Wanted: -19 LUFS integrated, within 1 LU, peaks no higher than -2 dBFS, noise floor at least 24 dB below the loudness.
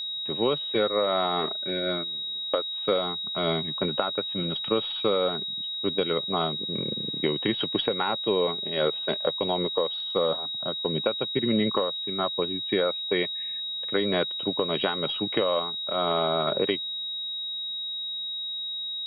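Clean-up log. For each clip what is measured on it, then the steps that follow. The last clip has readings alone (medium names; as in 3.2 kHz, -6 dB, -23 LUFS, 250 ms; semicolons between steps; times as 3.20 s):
steady tone 3.8 kHz; tone level -30 dBFS; loudness -26.5 LUFS; peak level -10.0 dBFS; loudness target -19.0 LUFS
-> band-stop 3.8 kHz, Q 30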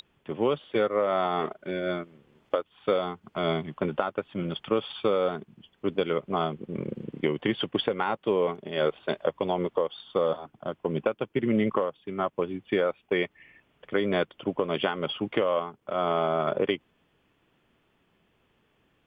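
steady tone not found; loudness -29.0 LUFS; peak level -10.5 dBFS; loudness target -19.0 LUFS
-> trim +10 dB; peak limiter -2 dBFS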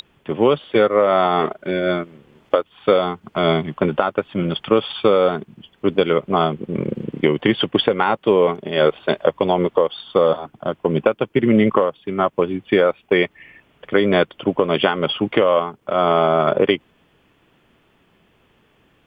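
loudness -19.0 LUFS; peak level -2.0 dBFS; noise floor -60 dBFS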